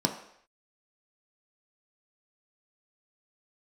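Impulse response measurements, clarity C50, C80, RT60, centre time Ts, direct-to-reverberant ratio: 9.0 dB, 11.5 dB, no single decay rate, 18 ms, 2.5 dB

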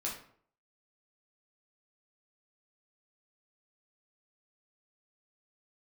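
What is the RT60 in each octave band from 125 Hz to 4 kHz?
0.60 s, 0.60 s, 0.60 s, 0.55 s, 0.45 s, 0.35 s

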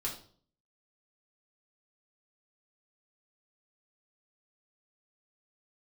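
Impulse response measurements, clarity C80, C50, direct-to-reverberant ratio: 12.5 dB, 8.5 dB, -4.0 dB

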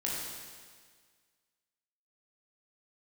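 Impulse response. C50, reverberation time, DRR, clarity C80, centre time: -1.0 dB, 1.7 s, -5.5 dB, 1.0 dB, 102 ms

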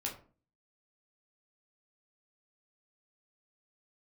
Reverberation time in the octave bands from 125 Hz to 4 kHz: 0.55 s, 0.55 s, 0.45 s, 0.40 s, 0.30 s, 0.25 s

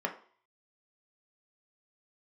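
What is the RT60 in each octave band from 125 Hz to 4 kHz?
0.25 s, 0.40 s, 0.45 s, 0.50 s, 0.45 s, 0.50 s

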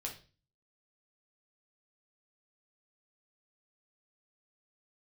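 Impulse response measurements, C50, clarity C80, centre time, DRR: 9.5 dB, 15.5 dB, 17 ms, -0.5 dB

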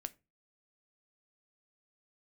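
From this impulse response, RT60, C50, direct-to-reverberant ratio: 0.25 s, 23.0 dB, 11.5 dB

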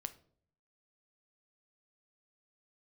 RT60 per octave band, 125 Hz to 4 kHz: 0.90 s, 0.75 s, 0.65 s, 0.50 s, 0.35 s, 0.35 s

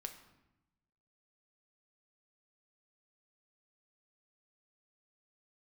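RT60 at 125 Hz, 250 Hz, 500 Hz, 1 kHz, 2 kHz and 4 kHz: 1.3 s, 1.2 s, 0.95 s, 0.90 s, 0.85 s, 0.65 s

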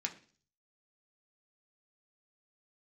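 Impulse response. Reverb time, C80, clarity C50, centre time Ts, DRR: 0.45 s, 18.5 dB, 14.5 dB, 9 ms, 1.0 dB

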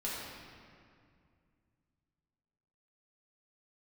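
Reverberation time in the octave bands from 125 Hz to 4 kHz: 3.4 s, 3.0 s, 2.3 s, 2.2 s, 2.0 s, 1.5 s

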